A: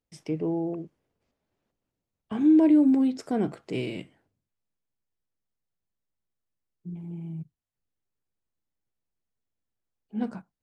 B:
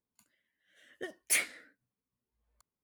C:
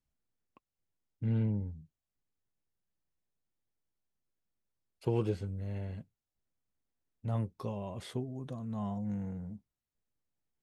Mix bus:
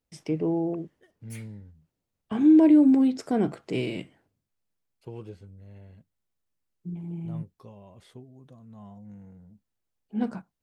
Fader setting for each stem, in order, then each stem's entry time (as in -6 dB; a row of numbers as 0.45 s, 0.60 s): +2.0 dB, -19.5 dB, -9.5 dB; 0.00 s, 0.00 s, 0.00 s